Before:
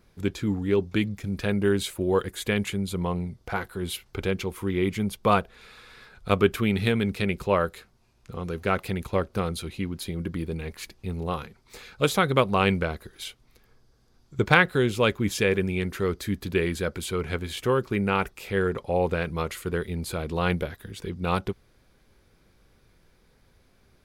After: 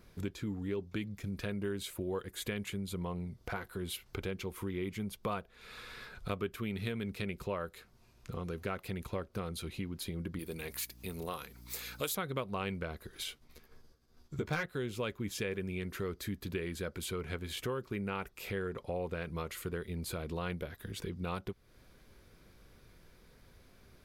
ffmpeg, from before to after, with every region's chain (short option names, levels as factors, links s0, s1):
-filter_complex "[0:a]asettb=1/sr,asplit=3[s0][s1][s2];[s0]atrim=end=10.394[s3];[s1]atrim=start=10.39:end=12.15,asetpts=PTS-STARTPTS,afade=t=in:d=0.004:c=qsin,afade=t=out:st=1.756:d=0.004:c=qsin,deesser=0.35,aemphasis=mode=production:type=bsi,aeval=exprs='val(0)+0.00251*(sin(2*PI*60*n/s)+sin(2*PI*2*60*n/s)/2+sin(2*PI*3*60*n/s)/3+sin(2*PI*4*60*n/s)/4+sin(2*PI*5*60*n/s)/5)':c=same[s4];[s2]atrim=start=12.146[s5];[s3][s4]acrossfade=d=0.004:c1=hsin:c2=qsin[s6];[s6][s5]acrossfade=d=0.004:c1=qsin:c2=hsin,asettb=1/sr,asplit=3[s7][s8][s9];[s7]atrim=end=13.274[s10];[s8]atrim=start=13.27:end=14.66,asetpts=PTS-STARTPTS,afade=t=in:d=0.004:c=qsin,afade=t=out:st=1.386:d=0.004:c=qsin,agate=range=0.0224:threshold=0.00158:ratio=3:release=100:detection=peak,asoftclip=type=hard:threshold=0.316,asplit=2[s11][s12];[s12]adelay=13,volume=0.794[s13];[s11][s13]amix=inputs=2:normalize=0,atrim=end_sample=61299[s14];[s9]atrim=start=14.656[s15];[s10][s14]acrossfade=d=0.004:c1=hsin:c2=qsin[s16];[s16][s15]acrossfade=d=0.004:c1=qsin:c2=hsin,equalizer=f=13000:w=7.6:g=8.5,bandreject=f=820:w=15,acompressor=threshold=0.01:ratio=3,volume=1.12"